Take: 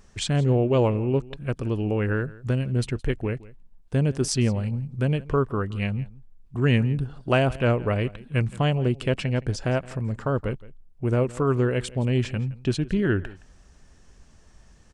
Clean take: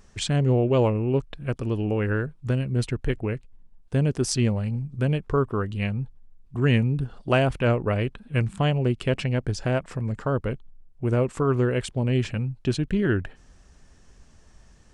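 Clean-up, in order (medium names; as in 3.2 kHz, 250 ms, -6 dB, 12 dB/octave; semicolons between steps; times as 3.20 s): inverse comb 168 ms -20 dB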